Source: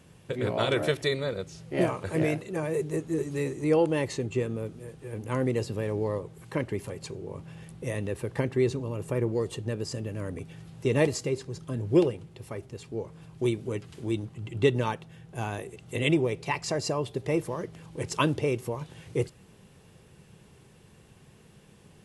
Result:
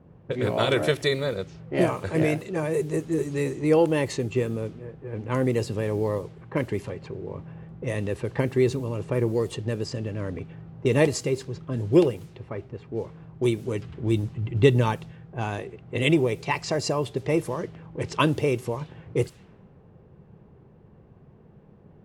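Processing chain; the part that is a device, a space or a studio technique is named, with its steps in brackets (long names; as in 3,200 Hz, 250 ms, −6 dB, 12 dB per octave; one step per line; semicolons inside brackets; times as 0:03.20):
cassette deck with a dynamic noise filter (white noise bed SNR 32 dB; low-pass that shuts in the quiet parts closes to 740 Hz, open at −25.5 dBFS)
0:13.79–0:15.12: low-shelf EQ 130 Hz +9.5 dB
level +3.5 dB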